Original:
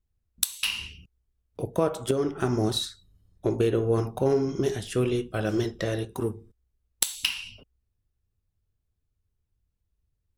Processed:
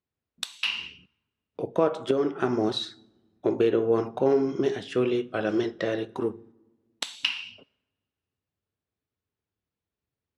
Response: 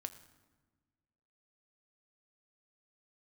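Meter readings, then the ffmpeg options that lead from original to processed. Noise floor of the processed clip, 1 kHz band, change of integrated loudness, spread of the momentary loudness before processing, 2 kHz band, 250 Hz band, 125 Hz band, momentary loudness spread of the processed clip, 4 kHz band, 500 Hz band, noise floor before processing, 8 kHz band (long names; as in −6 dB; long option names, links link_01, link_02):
below −85 dBFS, +2.0 dB, +0.5 dB, 9 LU, +1.5 dB, +1.0 dB, −8.5 dB, 13 LU, −0.5 dB, +2.0 dB, −79 dBFS, −12.5 dB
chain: -filter_complex "[0:a]highpass=220,lowpass=3600,asplit=2[link_01][link_02];[1:a]atrim=start_sample=2205[link_03];[link_02][link_03]afir=irnorm=-1:irlink=0,volume=-8dB[link_04];[link_01][link_04]amix=inputs=2:normalize=0"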